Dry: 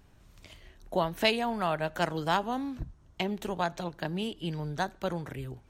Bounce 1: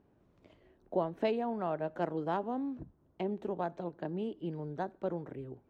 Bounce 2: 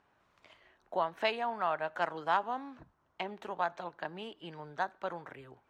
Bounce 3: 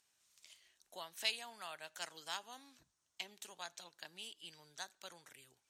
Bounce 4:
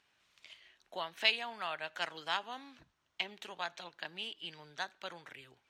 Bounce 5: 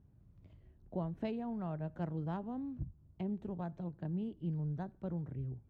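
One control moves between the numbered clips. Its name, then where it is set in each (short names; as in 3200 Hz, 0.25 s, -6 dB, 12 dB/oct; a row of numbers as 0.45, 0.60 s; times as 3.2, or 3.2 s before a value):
band-pass, frequency: 370, 1100, 7800, 2900, 120 Hz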